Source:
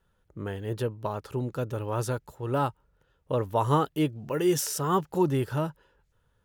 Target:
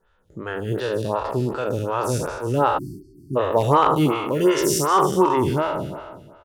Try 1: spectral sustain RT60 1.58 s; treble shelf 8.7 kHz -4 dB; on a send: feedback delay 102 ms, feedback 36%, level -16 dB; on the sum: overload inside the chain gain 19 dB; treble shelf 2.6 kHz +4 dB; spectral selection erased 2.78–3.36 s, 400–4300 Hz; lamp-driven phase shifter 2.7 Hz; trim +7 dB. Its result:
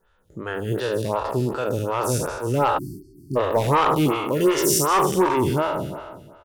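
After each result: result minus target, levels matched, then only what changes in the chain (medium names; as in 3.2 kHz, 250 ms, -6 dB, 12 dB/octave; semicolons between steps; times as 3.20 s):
overload inside the chain: distortion +15 dB; 8 kHz band +4.0 dB
change: overload inside the chain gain 13 dB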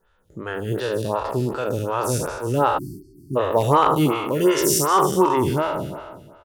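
8 kHz band +3.5 dB
change: first treble shelf 8.7 kHz -12.5 dB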